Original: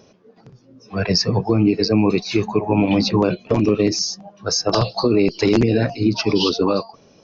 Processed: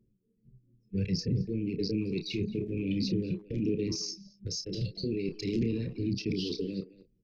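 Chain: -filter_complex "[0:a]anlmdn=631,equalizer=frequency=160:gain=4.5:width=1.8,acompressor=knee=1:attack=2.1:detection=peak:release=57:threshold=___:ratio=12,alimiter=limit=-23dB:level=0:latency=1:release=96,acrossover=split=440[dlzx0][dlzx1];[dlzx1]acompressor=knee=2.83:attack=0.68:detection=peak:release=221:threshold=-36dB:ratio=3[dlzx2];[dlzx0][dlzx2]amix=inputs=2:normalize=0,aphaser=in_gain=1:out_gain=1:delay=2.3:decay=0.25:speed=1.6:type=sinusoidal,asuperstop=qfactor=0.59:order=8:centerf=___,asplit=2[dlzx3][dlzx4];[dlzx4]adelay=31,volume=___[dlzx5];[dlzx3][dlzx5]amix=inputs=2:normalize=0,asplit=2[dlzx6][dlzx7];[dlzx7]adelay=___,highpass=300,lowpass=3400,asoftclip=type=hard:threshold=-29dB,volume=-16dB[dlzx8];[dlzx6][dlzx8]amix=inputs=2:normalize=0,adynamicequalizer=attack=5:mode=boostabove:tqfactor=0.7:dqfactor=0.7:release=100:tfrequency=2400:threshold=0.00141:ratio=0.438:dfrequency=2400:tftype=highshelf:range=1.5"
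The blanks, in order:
-19dB, 970, -8.5dB, 220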